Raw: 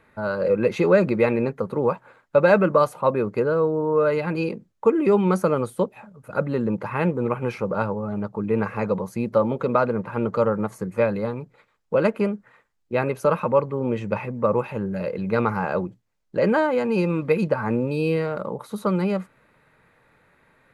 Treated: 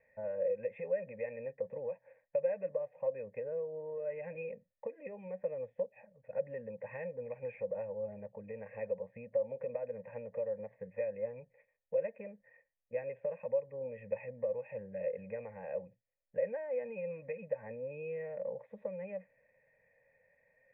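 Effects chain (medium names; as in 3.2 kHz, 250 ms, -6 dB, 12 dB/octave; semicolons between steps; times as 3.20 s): compression, threshold -25 dBFS, peak gain reduction 13.5 dB; cascade formant filter e; static phaser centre 1.3 kHz, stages 6; trim +2 dB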